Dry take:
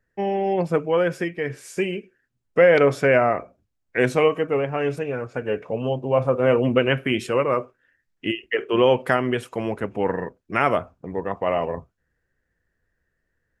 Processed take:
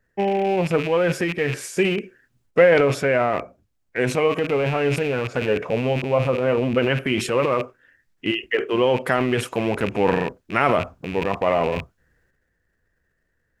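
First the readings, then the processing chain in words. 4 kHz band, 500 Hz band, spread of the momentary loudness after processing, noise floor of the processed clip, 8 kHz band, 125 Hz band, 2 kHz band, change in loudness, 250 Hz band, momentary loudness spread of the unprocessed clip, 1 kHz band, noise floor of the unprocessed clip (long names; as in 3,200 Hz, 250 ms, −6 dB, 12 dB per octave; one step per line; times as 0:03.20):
+2.5 dB, +0.5 dB, 6 LU, −71 dBFS, can't be measured, +2.5 dB, +1.5 dB, +1.0 dB, +1.5 dB, 11 LU, +1.0 dB, −76 dBFS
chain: loose part that buzzes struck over −38 dBFS, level −26 dBFS
transient designer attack +1 dB, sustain +8 dB
speech leveller within 3 dB 0.5 s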